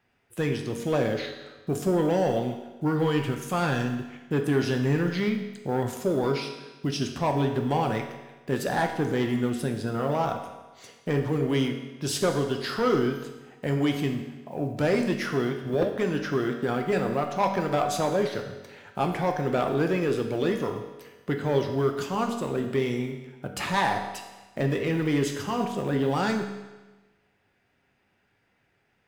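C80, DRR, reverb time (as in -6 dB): 8.5 dB, 3.5 dB, 1.2 s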